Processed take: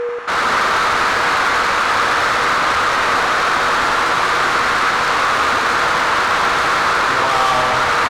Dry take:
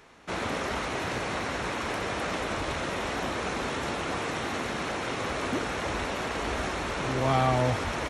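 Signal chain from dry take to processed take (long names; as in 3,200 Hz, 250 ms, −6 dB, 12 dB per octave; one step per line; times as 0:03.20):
parametric band 1,300 Hz +14.5 dB 1.3 octaves
in parallel at +2 dB: brickwall limiter −15.5 dBFS, peak gain reduction 10 dB
on the sum: mid-hump overdrive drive 13 dB, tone 4,000 Hz, clips at −2 dBFS
soft clipping −15 dBFS, distortion −11 dB
steady tone 480 Hz −18 dBFS
on a send: loudspeakers that aren't time-aligned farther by 31 metres −6 dB, 64 metres −5 dB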